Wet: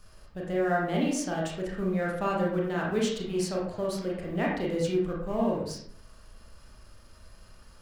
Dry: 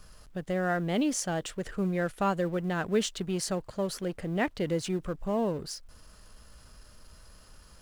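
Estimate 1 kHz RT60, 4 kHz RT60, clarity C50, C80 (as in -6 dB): 0.60 s, 0.40 s, 2.5 dB, 6.5 dB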